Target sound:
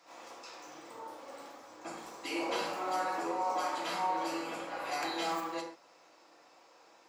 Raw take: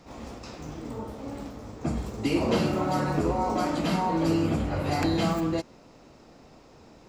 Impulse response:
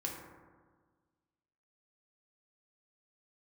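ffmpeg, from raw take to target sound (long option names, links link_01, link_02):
-filter_complex "[0:a]highpass=790,asplit=2[link_01][link_02];[link_02]asoftclip=type=tanh:threshold=-26dB,volume=-3dB[link_03];[link_01][link_03]amix=inputs=2:normalize=0[link_04];[1:a]atrim=start_sample=2205,atrim=end_sample=6615[link_05];[link_04][link_05]afir=irnorm=-1:irlink=0,volume=-7dB"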